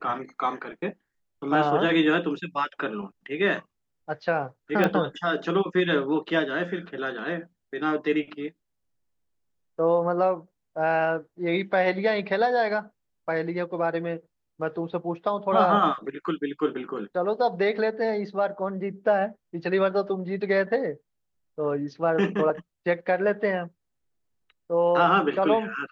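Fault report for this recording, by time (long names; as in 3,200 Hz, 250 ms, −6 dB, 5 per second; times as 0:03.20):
0:04.84: click −11 dBFS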